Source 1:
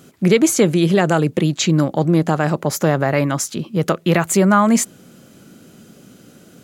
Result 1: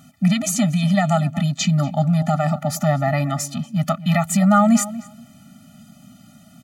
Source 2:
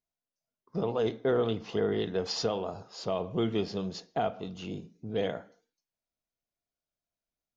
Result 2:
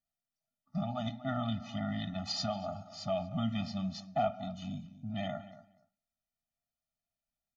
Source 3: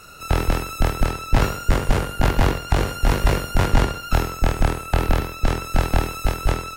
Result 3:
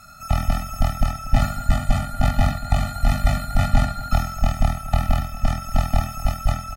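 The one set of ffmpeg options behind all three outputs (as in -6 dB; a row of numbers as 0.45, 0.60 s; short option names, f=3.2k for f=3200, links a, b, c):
-filter_complex "[0:a]asplit=2[a][b];[b]adelay=237,lowpass=f=2.4k:p=1,volume=-15.5dB,asplit=2[c][d];[d]adelay=237,lowpass=f=2.4k:p=1,volume=0.17[e];[a][c][e]amix=inputs=3:normalize=0,afftfilt=real='re*eq(mod(floor(b*sr/1024/290),2),0)':imag='im*eq(mod(floor(b*sr/1024/290),2),0)':win_size=1024:overlap=0.75"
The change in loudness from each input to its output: -2.5, -4.5, -1.0 LU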